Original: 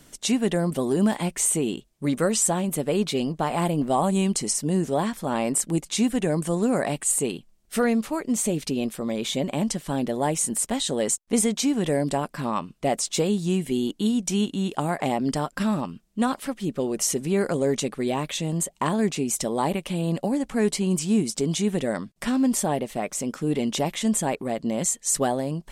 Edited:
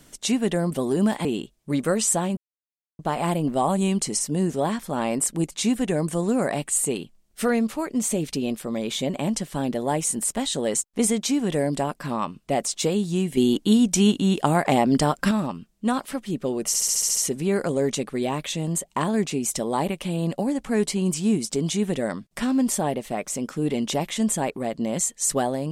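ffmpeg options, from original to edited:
-filter_complex "[0:a]asplit=13[s0][s1][s2][s3][s4][s5][s6][s7][s8][s9][s10][s11][s12];[s0]atrim=end=1.252[s13];[s1]atrim=start=1.588:end=2.71,asetpts=PTS-STARTPTS,afade=t=out:st=1.118:d=0.004:c=hsin[s14];[s2]atrim=start=2.71:end=3.33,asetpts=PTS-STARTPTS,volume=0[s15];[s3]atrim=start=3.33:end=13.712,asetpts=PTS-STARTPTS,afade=t=in:d=0.004:c=hsin[s16];[s4]atrim=start=13.708:end=15.652,asetpts=PTS-STARTPTS,volume=1.88[s17];[s5]atrim=start=15.648:end=17.082[s18];[s6]atrim=start=17.008:end=17.082[s19];[s7]atrim=start=17.008:end=17.082[s20];[s8]atrim=start=17.008:end=17.082[s21];[s9]atrim=start=17.008:end=17.082[s22];[s10]atrim=start=17.008:end=17.082[s23];[s11]atrim=start=17.008:end=17.082[s24];[s12]atrim=start=17.008[s25];[s14][s15][s16]concat=n=3:v=0:a=1[s26];[s13][s26]acrossfade=d=0.004:c1=hsin:c2=hsin[s27];[s27][s17]acrossfade=d=0.004:c1=hsin:c2=hsin[s28];[s28][s18]acrossfade=d=0.004:c1=hsin:c2=hsin[s29];[s29][s19]acrossfade=d=0.004:c1=hsin:c2=hsin[s30];[s30][s20]acrossfade=d=0.004:c1=hsin:c2=hsin[s31];[s31][s21]acrossfade=d=0.004:c1=hsin:c2=hsin[s32];[s32][s22]acrossfade=d=0.004:c1=hsin:c2=hsin[s33];[s33][s23]acrossfade=d=0.004:c1=hsin:c2=hsin[s34];[s34][s24]acrossfade=d=0.004:c1=hsin:c2=hsin[s35];[s35][s25]acrossfade=d=0.004:c1=hsin:c2=hsin"

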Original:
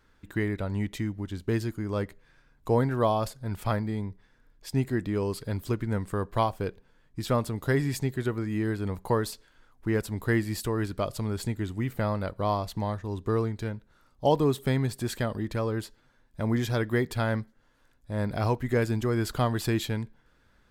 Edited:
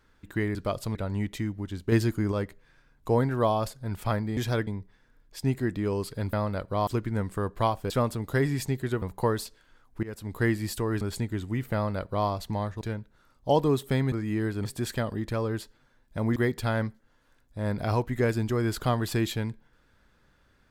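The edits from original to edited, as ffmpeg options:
-filter_complex "[0:a]asplit=17[s0][s1][s2][s3][s4][s5][s6][s7][s8][s9][s10][s11][s12][s13][s14][s15][s16];[s0]atrim=end=0.552[s17];[s1]atrim=start=10.878:end=11.282[s18];[s2]atrim=start=0.548:end=1.522[s19];[s3]atrim=start=1.518:end=1.922,asetpts=PTS-STARTPTS,volume=1.88[s20];[s4]atrim=start=1.918:end=3.972[s21];[s5]atrim=start=16.588:end=16.892[s22];[s6]atrim=start=3.968:end=5.632[s23];[s7]atrim=start=12.008:end=12.552[s24];[s8]atrim=start=5.628:end=6.662[s25];[s9]atrim=start=7.238:end=8.362[s26];[s10]atrim=start=8.888:end=9.9,asetpts=PTS-STARTPTS,afade=t=out:st=1.008:d=0.004:c=hsin:silence=0.112202[s27];[s11]atrim=start=9.9:end=10.882,asetpts=PTS-STARTPTS,afade=t=in:d=0.38:silence=0.112202[s28];[s12]atrim=start=11.278:end=13.082[s29];[s13]atrim=start=13.568:end=14.882[s30];[s14]atrim=start=8.358:end=8.892[s31];[s15]atrim=start=14.878:end=16.592[s32];[s16]atrim=start=16.888[s33];[s17][s18]acrossfade=d=0.004:c1=hsin:c2=hsin[s34];[s34][s19]acrossfade=d=0.004:c1=hsin:c2=hsin[s35];[s35][s20]acrossfade=d=0.004:c1=hsin:c2=hsin[s36];[s36][s21]acrossfade=d=0.004:c1=hsin:c2=hsin[s37];[s37][s22]acrossfade=d=0.004:c1=hsin:c2=hsin[s38];[s38][s23]acrossfade=d=0.004:c1=hsin:c2=hsin[s39];[s39][s24]acrossfade=d=0.004:c1=hsin:c2=hsin[s40];[s40][s25]acrossfade=d=0.004:c1=hsin:c2=hsin[s41];[s41][s26]acrossfade=d=0.004:c1=hsin:c2=hsin[s42];[s27][s28]concat=n=2:v=0:a=1[s43];[s42][s43]acrossfade=d=0.004:c1=hsin:c2=hsin[s44];[s44][s29]acrossfade=d=0.004:c1=hsin:c2=hsin[s45];[s45][s30]acrossfade=d=0.004:c1=hsin:c2=hsin[s46];[s46][s31]acrossfade=d=0.004:c1=hsin:c2=hsin[s47];[s47][s32]acrossfade=d=0.004:c1=hsin:c2=hsin[s48];[s48][s33]acrossfade=d=0.004:c1=hsin:c2=hsin"

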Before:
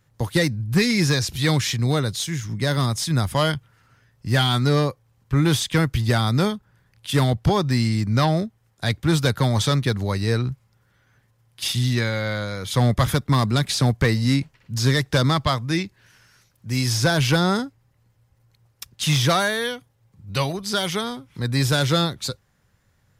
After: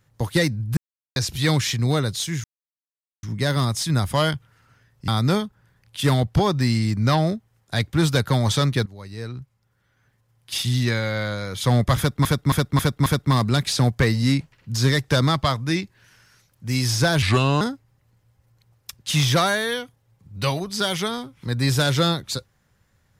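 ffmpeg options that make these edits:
-filter_complex "[0:a]asplit=12[s0][s1][s2][s3][s4][s5][s6][s7][s8][s9][s10][s11];[s0]atrim=end=0.77,asetpts=PTS-STARTPTS,afade=t=out:st=0.766:d=0.004:c=hsin[s12];[s1]atrim=start=0.77:end=1.16,asetpts=PTS-STARTPTS,volume=0[s13];[s2]atrim=start=1.16:end=2.44,asetpts=PTS-STARTPTS,afade=t=in:d=0.004:c=hsin,afade=t=out:st=1.276:d=0.004:c=hsin,apad=pad_dur=0.79[s14];[s3]atrim=start=2.44:end=4.292,asetpts=PTS-STARTPTS,afade=t=in:d=0.004:c=hsin[s15];[s4]atrim=start=6.178:end=9.96,asetpts=PTS-STARTPTS,afade=t=out:st=3.778:d=0.004:c=hsin:silence=0.105925[s16];[s5]atrim=start=9.96:end=13.352,asetpts=PTS-STARTPTS,afade=t=in:d=1.94:silence=0.105925[s17];[s6]atrim=start=13.078:end=13.352[s18];[s7]atrim=start=13.078:end=13.352[s19];[s8]atrim=start=13.078:end=13.352[s20];[s9]atrim=start=13.078:end=17.244[s21];[s10]atrim=start=17.24:end=17.54,asetpts=PTS-STARTPTS,asetrate=33957,aresample=44100[s22];[s11]atrim=start=17.536[s23];[s12][s13][s14][s15]concat=n=4:v=0:a=1[s24];[s16][s17]concat=n=2:v=0:a=1[s25];[s24][s25]acrossfade=d=0.004:c1=hsin:c2=hsin[s26];[s26][s18]acrossfade=d=0.004:c1=hsin:c2=hsin[s27];[s27][s19]acrossfade=d=0.004:c1=hsin:c2=hsin[s28];[s28][s20]acrossfade=d=0.004:c1=hsin:c2=hsin[s29];[s29][s21]acrossfade=d=0.004:c1=hsin:c2=hsin[s30];[s30][s22]acrossfade=d=0.004:c1=hsin:c2=hsin[s31];[s31][s23]acrossfade=d=0.004:c1=hsin:c2=hsin"

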